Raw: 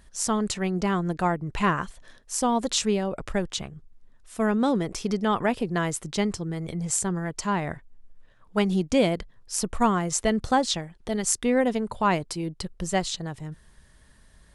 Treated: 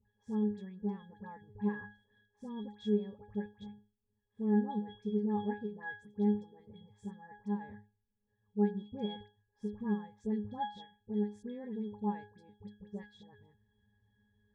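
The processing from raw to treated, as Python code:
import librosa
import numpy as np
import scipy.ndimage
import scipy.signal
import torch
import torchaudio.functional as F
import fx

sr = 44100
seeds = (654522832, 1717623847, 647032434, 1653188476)

y = fx.octave_resonator(x, sr, note='G#', decay_s=0.32)
y = fx.dispersion(y, sr, late='highs', ms=80.0, hz=1400.0)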